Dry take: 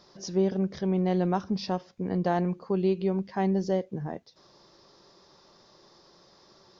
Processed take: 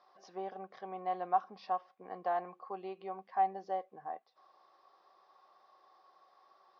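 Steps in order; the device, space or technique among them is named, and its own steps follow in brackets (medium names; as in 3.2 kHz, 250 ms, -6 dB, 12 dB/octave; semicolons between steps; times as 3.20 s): tin-can telephone (band-pass 650–2500 Hz; small resonant body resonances 760/1100 Hz, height 15 dB, ringing for 50 ms); trim -8 dB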